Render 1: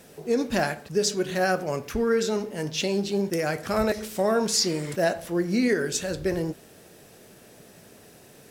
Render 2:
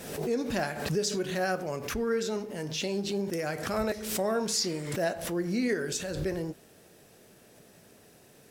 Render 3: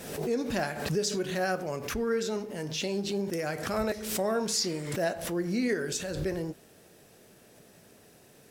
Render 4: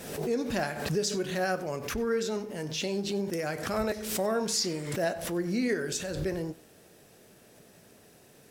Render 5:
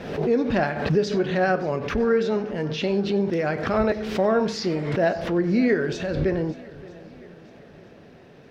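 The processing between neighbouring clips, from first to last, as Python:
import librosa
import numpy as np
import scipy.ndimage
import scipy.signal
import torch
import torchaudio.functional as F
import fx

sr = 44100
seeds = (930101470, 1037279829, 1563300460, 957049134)

y1 = fx.pre_swell(x, sr, db_per_s=57.0)
y1 = F.gain(torch.from_numpy(y1), -6.0).numpy()
y2 = y1
y3 = y2 + 10.0 ** (-21.5 / 20.0) * np.pad(y2, (int(94 * sr / 1000.0), 0))[:len(y2)]
y4 = fx.air_absorb(y3, sr, metres=270.0)
y4 = fx.echo_swing(y4, sr, ms=957, ratio=1.5, feedback_pct=33, wet_db=-20.0)
y4 = F.gain(torch.from_numpy(y4), 9.0).numpy()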